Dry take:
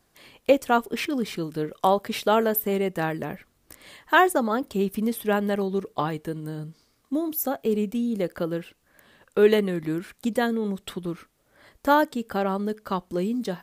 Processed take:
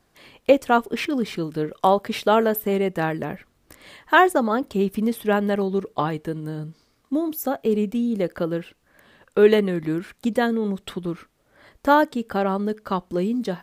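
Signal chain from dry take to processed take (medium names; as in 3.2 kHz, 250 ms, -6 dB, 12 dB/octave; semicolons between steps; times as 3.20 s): treble shelf 6.1 kHz -7.5 dB; trim +3 dB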